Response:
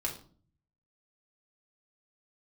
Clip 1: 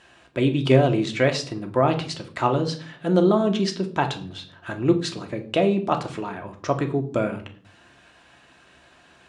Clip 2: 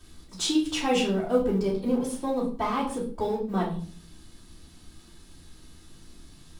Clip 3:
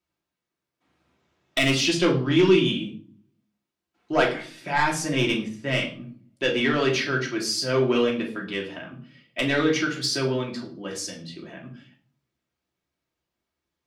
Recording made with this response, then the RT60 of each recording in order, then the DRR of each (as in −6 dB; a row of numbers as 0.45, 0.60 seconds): 3; 0.45, 0.45, 0.45 seconds; 4.0, −10.5, −2.0 decibels